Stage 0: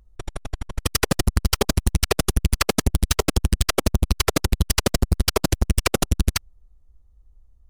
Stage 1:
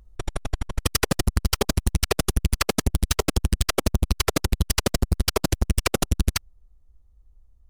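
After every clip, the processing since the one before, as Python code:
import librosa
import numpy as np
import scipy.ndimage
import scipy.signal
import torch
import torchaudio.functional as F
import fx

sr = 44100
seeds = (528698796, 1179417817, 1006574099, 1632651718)

y = fx.rider(x, sr, range_db=5, speed_s=0.5)
y = y * librosa.db_to_amplitude(-2.0)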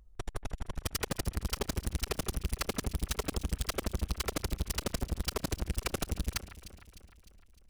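y = np.clip(10.0 ** (20.0 / 20.0) * x, -1.0, 1.0) / 10.0 ** (20.0 / 20.0)
y = fx.echo_alternate(y, sr, ms=152, hz=2500.0, feedback_pct=72, wet_db=-12)
y = y * librosa.db_to_amplitude(-7.0)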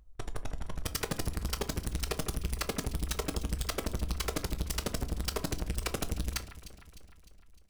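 y = fx.room_shoebox(x, sr, seeds[0], volume_m3=190.0, walls='furnished', distance_m=0.47)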